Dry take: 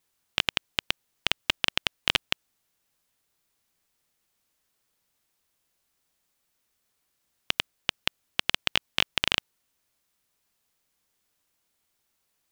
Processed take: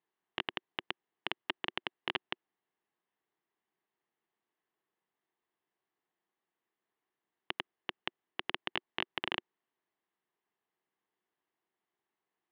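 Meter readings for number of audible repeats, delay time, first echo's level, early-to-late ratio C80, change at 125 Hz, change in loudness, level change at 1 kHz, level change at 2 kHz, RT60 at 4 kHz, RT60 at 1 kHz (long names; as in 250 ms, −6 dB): no echo audible, no echo audible, no echo audible, no reverb audible, −13.5 dB, −11.5 dB, −5.5 dB, −10.0 dB, no reverb audible, no reverb audible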